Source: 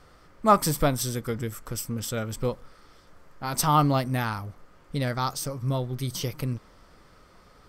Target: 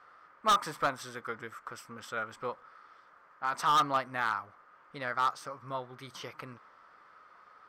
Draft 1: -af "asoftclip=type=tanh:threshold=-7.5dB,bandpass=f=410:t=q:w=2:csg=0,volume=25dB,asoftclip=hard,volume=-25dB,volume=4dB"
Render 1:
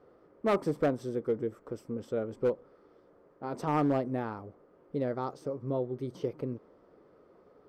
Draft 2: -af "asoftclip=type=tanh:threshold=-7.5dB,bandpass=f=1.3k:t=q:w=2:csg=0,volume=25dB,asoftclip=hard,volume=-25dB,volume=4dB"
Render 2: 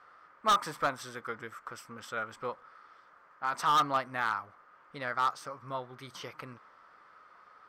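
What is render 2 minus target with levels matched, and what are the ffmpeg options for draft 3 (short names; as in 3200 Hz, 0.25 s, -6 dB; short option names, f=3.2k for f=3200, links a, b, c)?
soft clip: distortion +11 dB
-af "asoftclip=type=tanh:threshold=-1dB,bandpass=f=1.3k:t=q:w=2:csg=0,volume=25dB,asoftclip=hard,volume=-25dB,volume=4dB"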